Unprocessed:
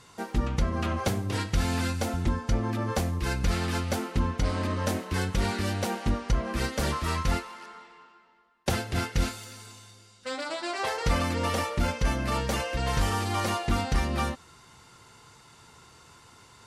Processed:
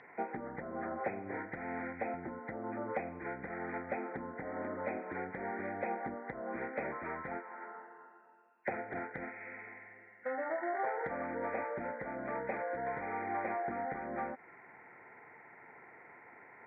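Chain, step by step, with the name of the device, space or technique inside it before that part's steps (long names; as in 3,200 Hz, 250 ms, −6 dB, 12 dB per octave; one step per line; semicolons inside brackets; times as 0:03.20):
hearing aid with frequency lowering (hearing-aid frequency compression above 1,400 Hz 4 to 1; downward compressor 3 to 1, threshold −34 dBFS, peak gain reduction 11.5 dB; loudspeaker in its box 330–5,100 Hz, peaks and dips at 750 Hz +5 dB, 1,100 Hz −9 dB, 1,600 Hz −8 dB, 2,300 Hz −10 dB, 3,400 Hz +7 dB)
level +2 dB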